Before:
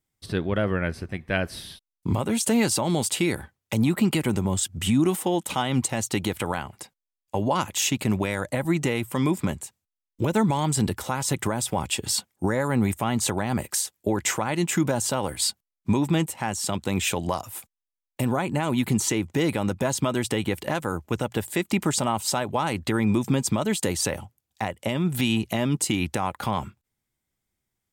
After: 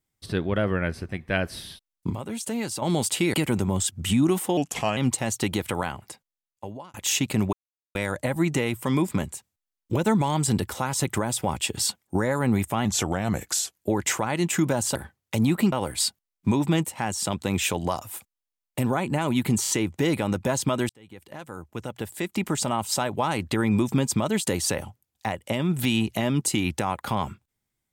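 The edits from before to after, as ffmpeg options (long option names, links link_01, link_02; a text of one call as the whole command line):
ffmpeg -i in.wav -filter_complex "[0:a]asplit=15[link_01][link_02][link_03][link_04][link_05][link_06][link_07][link_08][link_09][link_10][link_11][link_12][link_13][link_14][link_15];[link_01]atrim=end=2.102[link_16];[link_02]atrim=start=2.098:end=2.822,asetpts=PTS-STARTPTS,volume=-8dB[link_17];[link_03]atrim=start=2.818:end=3.342[link_18];[link_04]atrim=start=4.108:end=5.344[link_19];[link_05]atrim=start=5.34:end=5.68,asetpts=PTS-STARTPTS,asetrate=37485,aresample=44100[link_20];[link_06]atrim=start=5.676:end=7.65,asetpts=PTS-STARTPTS,afade=type=out:start_time=1.044:duration=0.93[link_21];[link_07]atrim=start=7.65:end=8.24,asetpts=PTS-STARTPTS,afade=type=in:duration=0.004:curve=hsin,afade=type=out:start_time=0.586:duration=0.004:curve=hsin,apad=pad_dur=0.42[link_22];[link_08]atrim=start=8.24:end=13.144,asetpts=PTS-STARTPTS,afade=type=in:duration=0.004:curve=hsin[link_23];[link_09]atrim=start=13.14:end=13.97,asetpts=PTS-STARTPTS,asetrate=39249,aresample=44100[link_24];[link_10]atrim=start=13.966:end=15.142[link_25];[link_11]atrim=start=3.338:end=4.112[link_26];[link_12]atrim=start=15.138:end=19.072[link_27];[link_13]atrim=start=19.038:end=19.072[link_28];[link_14]atrim=start=19.038:end=20.25,asetpts=PTS-STARTPTS,afade=type=out:start_time=1.208:duration=0.004:curve=hsin[link_29];[link_15]atrim=start=20.25,asetpts=PTS-STARTPTS,afade=type=in:duration=2.17[link_30];[link_16][link_17]acrossfade=duration=0.004:curve1=hsin:curve2=hsin[link_31];[link_31][link_18]acrossfade=duration=0.004:curve1=hsin:curve2=hsin[link_32];[link_32][link_19]acrossfade=duration=0.004:curve1=hsin:curve2=hsin[link_33];[link_33][link_20]acrossfade=duration=0.004:curve1=hsin:curve2=hsin[link_34];[link_21][link_22][link_23]concat=n=3:v=0:a=1[link_35];[link_34][link_35]acrossfade=duration=0.004:curve1=hsin:curve2=hsin[link_36];[link_36][link_24]acrossfade=duration=0.004:curve1=hsin:curve2=hsin[link_37];[link_37][link_25]acrossfade=duration=0.004:curve1=hsin:curve2=hsin[link_38];[link_38][link_26]acrossfade=duration=0.004:curve1=hsin:curve2=hsin[link_39];[link_39][link_27]acrossfade=duration=0.004:curve1=hsin:curve2=hsin[link_40];[link_40][link_28]acrossfade=duration=0.004:curve1=hsin:curve2=hsin[link_41];[link_29][link_30]concat=n=2:v=0:a=1[link_42];[link_41][link_42]acrossfade=duration=0.004:curve1=hsin:curve2=hsin" out.wav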